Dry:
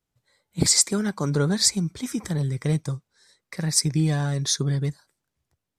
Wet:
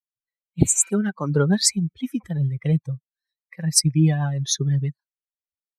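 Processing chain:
spectral dynamics exaggerated over time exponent 2
tape wow and flutter 18 cents
rotating-speaker cabinet horn 6.3 Hz
healed spectral selection 0:00.65–0:00.86, 920–5,900 Hz both
level +7.5 dB

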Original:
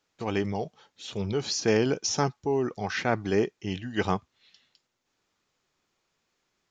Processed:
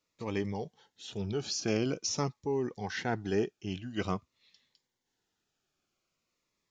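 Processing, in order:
phaser whose notches keep moving one way falling 0.47 Hz
level −4.5 dB

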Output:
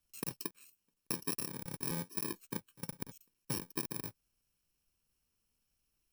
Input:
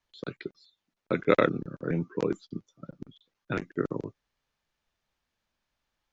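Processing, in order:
samples in bit-reversed order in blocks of 64 samples
downward compressor 10 to 1, threshold −35 dBFS, peak gain reduction 20 dB
level +1 dB

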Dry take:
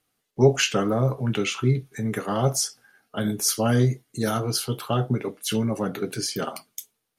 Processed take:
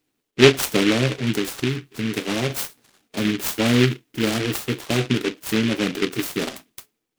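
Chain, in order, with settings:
parametric band 310 Hz +11.5 dB 0.99 octaves
0:01.32–0:02.50: downward compressor 3 to 1, threshold −18 dBFS, peak gain reduction 6.5 dB
short delay modulated by noise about 2,300 Hz, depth 0.2 ms
level −2 dB

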